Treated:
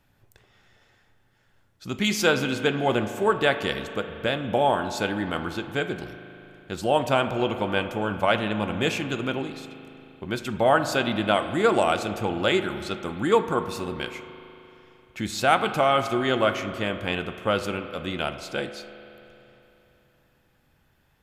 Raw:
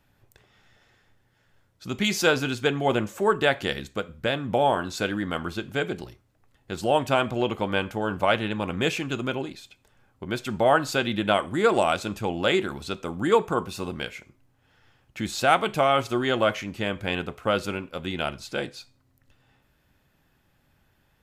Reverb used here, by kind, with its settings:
spring reverb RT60 3.2 s, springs 38 ms, chirp 40 ms, DRR 9.5 dB

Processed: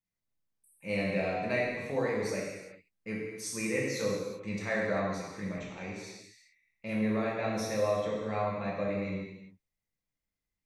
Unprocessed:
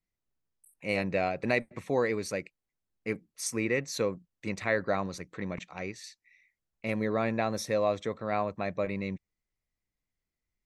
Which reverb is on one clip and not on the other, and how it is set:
reverb whose tail is shaped and stops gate 430 ms falling, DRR −5.5 dB
level −8.5 dB

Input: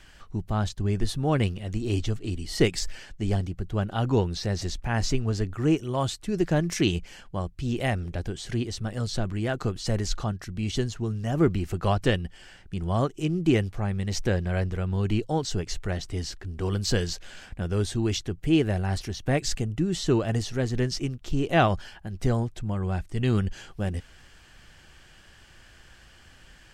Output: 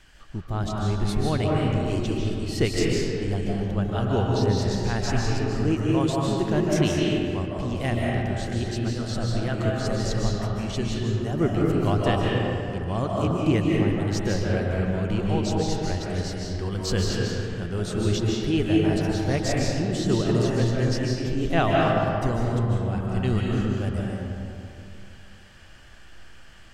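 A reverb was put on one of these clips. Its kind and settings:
comb and all-pass reverb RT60 2.7 s, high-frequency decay 0.45×, pre-delay 110 ms, DRR −3.5 dB
level −2.5 dB

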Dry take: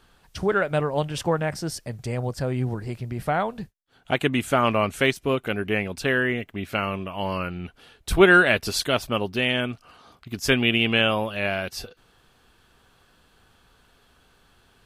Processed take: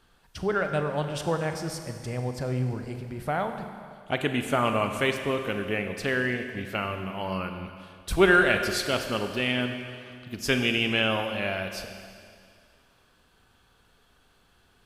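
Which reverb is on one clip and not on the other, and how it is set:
four-comb reverb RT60 2.2 s, combs from 32 ms, DRR 6 dB
level −4.5 dB

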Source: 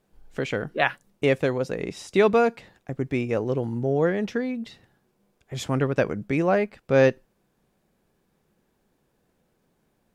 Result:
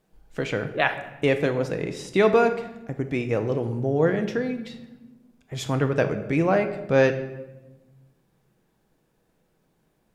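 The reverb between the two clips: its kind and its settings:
rectangular room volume 510 cubic metres, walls mixed, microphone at 0.58 metres

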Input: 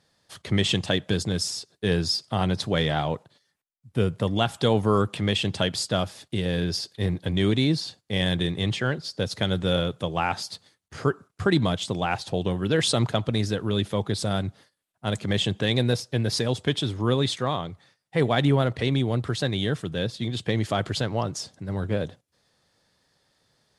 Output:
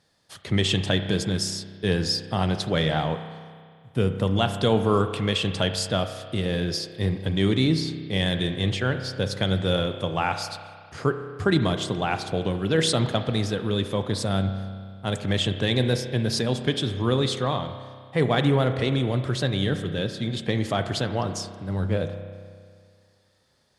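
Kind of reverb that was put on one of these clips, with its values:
spring reverb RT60 2 s, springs 31 ms, chirp 55 ms, DRR 8 dB

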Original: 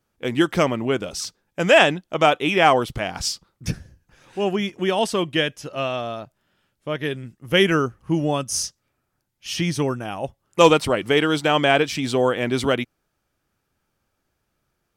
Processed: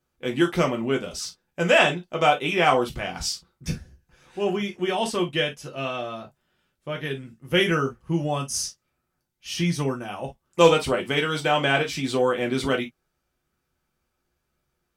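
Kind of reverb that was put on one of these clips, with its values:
reverb whose tail is shaped and stops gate 80 ms falling, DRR 1 dB
level −5.5 dB

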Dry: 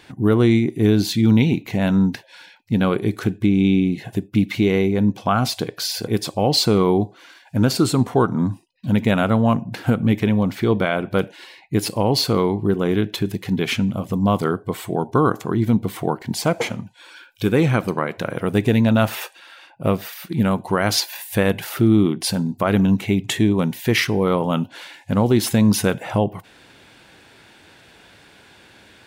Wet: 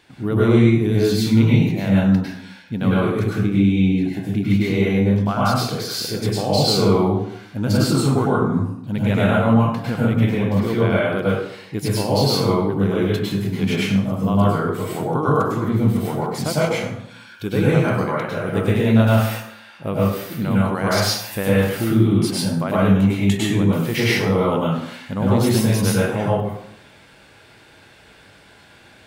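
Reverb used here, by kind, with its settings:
dense smooth reverb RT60 0.75 s, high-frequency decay 0.65×, pre-delay 90 ms, DRR −7 dB
level −7 dB

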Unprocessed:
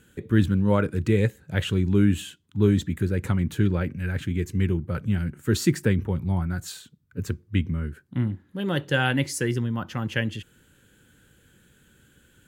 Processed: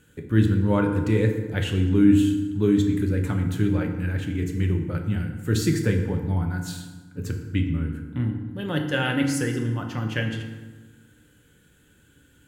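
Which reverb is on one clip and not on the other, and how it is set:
feedback delay network reverb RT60 1.3 s, low-frequency decay 1.3×, high-frequency decay 0.65×, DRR 3 dB
level −2 dB

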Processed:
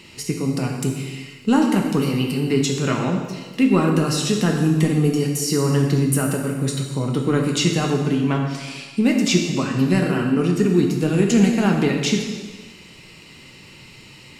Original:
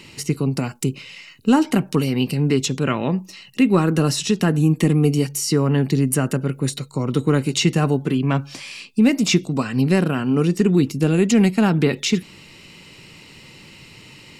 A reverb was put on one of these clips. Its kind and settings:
dense smooth reverb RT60 1.4 s, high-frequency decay 0.95×, DRR 1 dB
level −2.5 dB

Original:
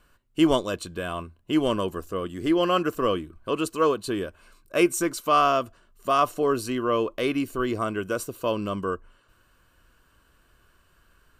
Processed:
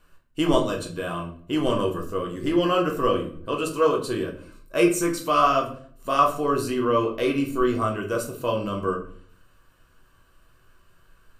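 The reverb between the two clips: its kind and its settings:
rectangular room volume 56 cubic metres, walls mixed, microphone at 0.63 metres
level −2 dB

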